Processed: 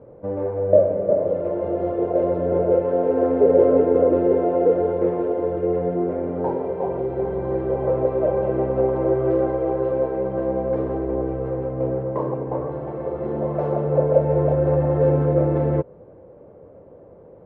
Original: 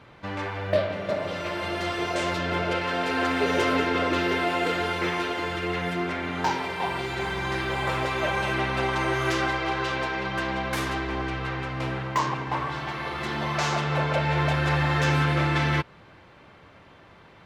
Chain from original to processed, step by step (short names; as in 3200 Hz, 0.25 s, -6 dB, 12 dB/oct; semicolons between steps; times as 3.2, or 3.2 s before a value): synth low-pass 510 Hz, resonance Q 4.9; gain +2 dB